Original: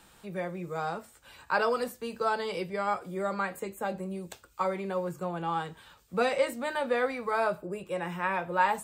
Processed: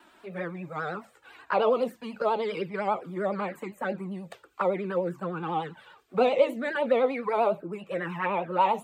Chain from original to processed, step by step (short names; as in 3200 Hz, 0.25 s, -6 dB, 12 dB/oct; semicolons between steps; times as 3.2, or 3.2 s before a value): envelope flanger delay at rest 3.3 ms, full sweep at -26 dBFS; vibrato 10 Hz 95 cents; three-band isolator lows -22 dB, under 160 Hz, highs -14 dB, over 3300 Hz; gain +6.5 dB